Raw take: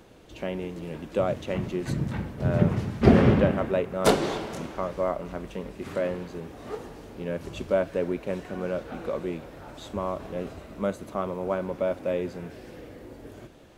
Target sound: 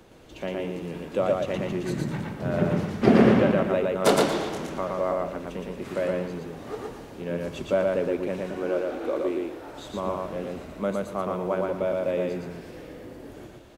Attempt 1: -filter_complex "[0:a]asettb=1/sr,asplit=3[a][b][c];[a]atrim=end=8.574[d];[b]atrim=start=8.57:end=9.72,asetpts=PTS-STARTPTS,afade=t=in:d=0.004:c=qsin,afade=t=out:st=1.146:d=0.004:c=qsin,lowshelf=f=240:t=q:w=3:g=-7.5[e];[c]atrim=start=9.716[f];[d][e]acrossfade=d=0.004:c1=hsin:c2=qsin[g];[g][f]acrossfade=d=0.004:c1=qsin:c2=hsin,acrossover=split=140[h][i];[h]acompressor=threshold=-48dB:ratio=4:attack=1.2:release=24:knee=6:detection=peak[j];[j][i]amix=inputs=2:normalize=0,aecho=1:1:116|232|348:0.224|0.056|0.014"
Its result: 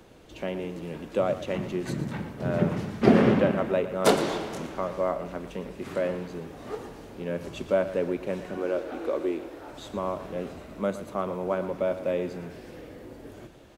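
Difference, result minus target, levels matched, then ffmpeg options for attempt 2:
echo-to-direct -10.5 dB
-filter_complex "[0:a]asettb=1/sr,asplit=3[a][b][c];[a]atrim=end=8.574[d];[b]atrim=start=8.57:end=9.72,asetpts=PTS-STARTPTS,afade=t=in:d=0.004:c=qsin,afade=t=out:st=1.146:d=0.004:c=qsin,lowshelf=f=240:t=q:w=3:g=-7.5[e];[c]atrim=start=9.716[f];[d][e]acrossfade=d=0.004:c1=hsin:c2=qsin[g];[g][f]acrossfade=d=0.004:c1=qsin:c2=hsin,acrossover=split=140[h][i];[h]acompressor=threshold=-48dB:ratio=4:attack=1.2:release=24:knee=6:detection=peak[j];[j][i]amix=inputs=2:normalize=0,aecho=1:1:116|232|348|464:0.794|0.199|0.0496|0.0124"

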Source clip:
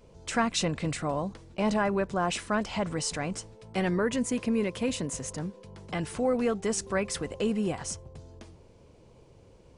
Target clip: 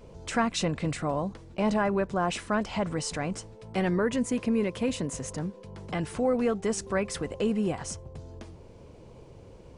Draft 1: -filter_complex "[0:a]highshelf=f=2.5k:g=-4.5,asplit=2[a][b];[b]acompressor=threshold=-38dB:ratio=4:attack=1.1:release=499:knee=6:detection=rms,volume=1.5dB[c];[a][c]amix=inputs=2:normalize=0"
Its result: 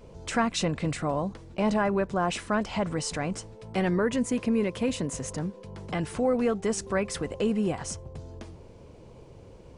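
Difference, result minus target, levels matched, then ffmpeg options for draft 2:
compressor: peak gain reduction -5 dB
-filter_complex "[0:a]highshelf=f=2.5k:g=-4.5,asplit=2[a][b];[b]acompressor=threshold=-44.5dB:ratio=4:attack=1.1:release=499:knee=6:detection=rms,volume=1.5dB[c];[a][c]amix=inputs=2:normalize=0"

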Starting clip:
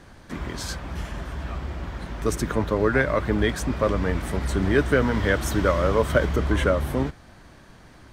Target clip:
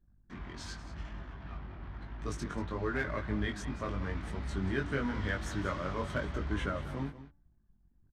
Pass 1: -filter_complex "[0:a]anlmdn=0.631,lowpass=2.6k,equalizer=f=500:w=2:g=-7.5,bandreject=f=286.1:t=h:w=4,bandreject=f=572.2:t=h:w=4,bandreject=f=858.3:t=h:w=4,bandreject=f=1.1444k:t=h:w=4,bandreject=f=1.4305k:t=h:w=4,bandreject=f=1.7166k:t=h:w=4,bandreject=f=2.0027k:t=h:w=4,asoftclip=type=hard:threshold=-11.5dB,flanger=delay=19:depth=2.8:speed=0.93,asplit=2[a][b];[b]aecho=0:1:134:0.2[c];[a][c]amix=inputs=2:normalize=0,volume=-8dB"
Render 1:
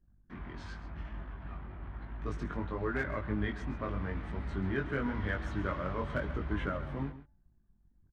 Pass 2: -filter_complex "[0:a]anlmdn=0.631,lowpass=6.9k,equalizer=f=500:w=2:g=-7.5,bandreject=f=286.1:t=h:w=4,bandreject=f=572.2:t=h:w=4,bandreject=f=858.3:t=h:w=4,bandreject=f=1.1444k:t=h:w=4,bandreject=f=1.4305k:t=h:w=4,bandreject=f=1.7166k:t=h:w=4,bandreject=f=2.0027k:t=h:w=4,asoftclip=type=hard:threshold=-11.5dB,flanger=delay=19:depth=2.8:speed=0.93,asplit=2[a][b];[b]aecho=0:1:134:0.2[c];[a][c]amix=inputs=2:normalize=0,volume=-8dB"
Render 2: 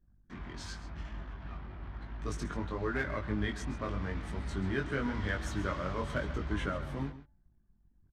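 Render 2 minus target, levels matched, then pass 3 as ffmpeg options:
echo 52 ms early
-filter_complex "[0:a]anlmdn=0.631,lowpass=6.9k,equalizer=f=500:w=2:g=-7.5,bandreject=f=286.1:t=h:w=4,bandreject=f=572.2:t=h:w=4,bandreject=f=858.3:t=h:w=4,bandreject=f=1.1444k:t=h:w=4,bandreject=f=1.4305k:t=h:w=4,bandreject=f=1.7166k:t=h:w=4,bandreject=f=2.0027k:t=h:w=4,asoftclip=type=hard:threshold=-11.5dB,flanger=delay=19:depth=2.8:speed=0.93,asplit=2[a][b];[b]aecho=0:1:186:0.2[c];[a][c]amix=inputs=2:normalize=0,volume=-8dB"

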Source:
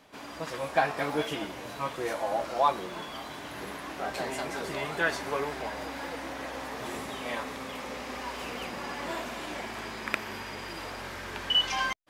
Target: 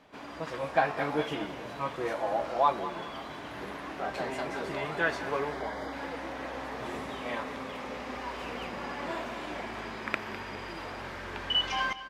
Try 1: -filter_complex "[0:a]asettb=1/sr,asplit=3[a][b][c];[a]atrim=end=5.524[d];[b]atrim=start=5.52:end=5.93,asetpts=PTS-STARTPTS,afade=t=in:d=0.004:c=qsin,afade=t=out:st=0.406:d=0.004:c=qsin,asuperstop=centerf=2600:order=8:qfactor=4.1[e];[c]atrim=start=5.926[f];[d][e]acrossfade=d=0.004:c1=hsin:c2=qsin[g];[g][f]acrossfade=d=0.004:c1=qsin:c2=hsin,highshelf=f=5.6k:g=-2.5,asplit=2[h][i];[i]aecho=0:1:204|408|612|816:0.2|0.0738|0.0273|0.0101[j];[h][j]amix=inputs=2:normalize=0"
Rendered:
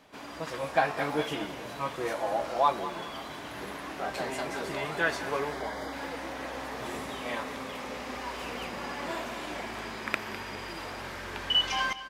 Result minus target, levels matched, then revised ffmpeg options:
8000 Hz band +6.0 dB
-filter_complex "[0:a]asettb=1/sr,asplit=3[a][b][c];[a]atrim=end=5.524[d];[b]atrim=start=5.52:end=5.93,asetpts=PTS-STARTPTS,afade=t=in:d=0.004:c=qsin,afade=t=out:st=0.406:d=0.004:c=qsin,asuperstop=centerf=2600:order=8:qfactor=4.1[e];[c]atrim=start=5.926[f];[d][e]acrossfade=d=0.004:c1=hsin:c2=qsin[g];[g][f]acrossfade=d=0.004:c1=qsin:c2=hsin,highshelf=f=5.6k:g=-14,asplit=2[h][i];[i]aecho=0:1:204|408|612|816:0.2|0.0738|0.0273|0.0101[j];[h][j]amix=inputs=2:normalize=0"

